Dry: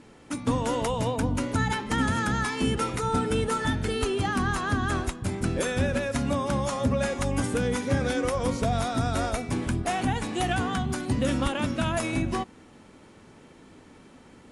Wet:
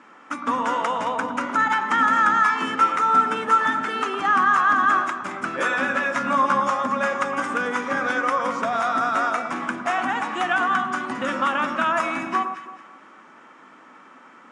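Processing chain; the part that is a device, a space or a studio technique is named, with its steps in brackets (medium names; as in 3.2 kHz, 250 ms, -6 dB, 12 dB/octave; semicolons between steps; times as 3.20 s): television speaker (cabinet simulation 210–7800 Hz, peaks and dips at 430 Hz -6 dB, 1.2 kHz +6 dB, 4.2 kHz -7 dB); peaking EQ 1.4 kHz +13.5 dB 1.9 oct; 5.52–6.60 s: doubling 15 ms -3 dB; echo whose repeats swap between lows and highs 110 ms, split 1.3 kHz, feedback 55%, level -6 dB; trim -3.5 dB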